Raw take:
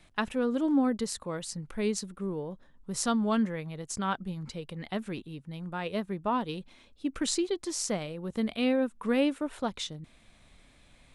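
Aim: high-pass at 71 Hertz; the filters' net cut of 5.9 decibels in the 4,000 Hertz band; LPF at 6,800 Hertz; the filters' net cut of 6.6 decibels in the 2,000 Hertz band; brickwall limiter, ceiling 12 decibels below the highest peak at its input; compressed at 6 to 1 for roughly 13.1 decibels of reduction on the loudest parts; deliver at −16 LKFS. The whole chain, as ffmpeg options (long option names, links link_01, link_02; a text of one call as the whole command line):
ffmpeg -i in.wav -af "highpass=71,lowpass=6800,equalizer=frequency=2000:width_type=o:gain=-8,equalizer=frequency=4000:width_type=o:gain=-4.5,acompressor=threshold=-37dB:ratio=6,volume=28dB,alimiter=limit=-7.5dB:level=0:latency=1" out.wav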